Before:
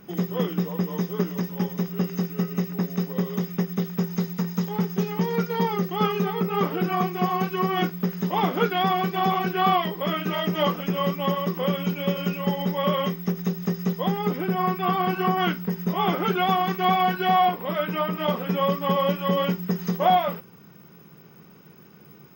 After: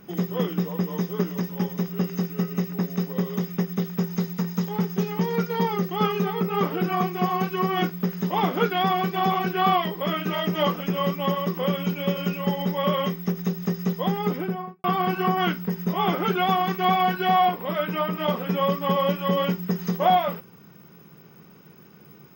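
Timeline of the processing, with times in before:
0:14.32–0:14.84: fade out and dull

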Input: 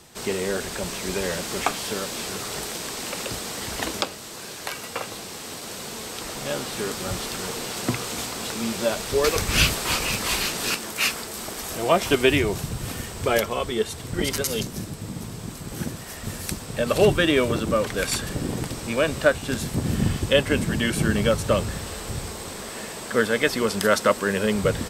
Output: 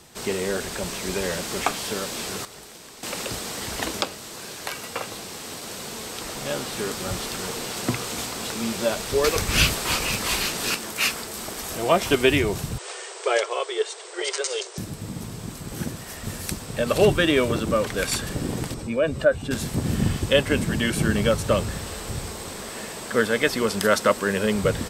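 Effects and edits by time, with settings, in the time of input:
0:02.45–0:03.03: clip gain −12 dB
0:12.78–0:14.78: linear-phase brick-wall band-pass 350–9,200 Hz
0:18.74–0:19.51: expanding power law on the bin magnitudes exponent 1.5

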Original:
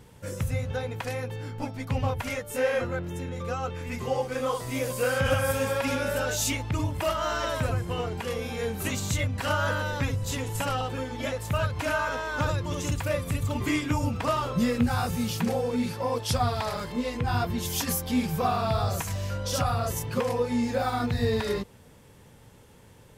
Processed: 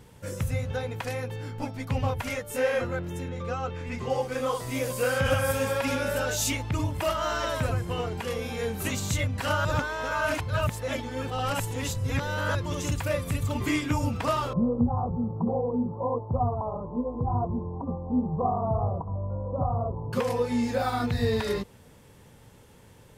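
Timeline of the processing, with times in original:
0:03.28–0:04.10: high-frequency loss of the air 63 metres
0:09.65–0:12.55: reverse
0:14.53–0:20.13: Butterworth low-pass 1,100 Hz 72 dB per octave

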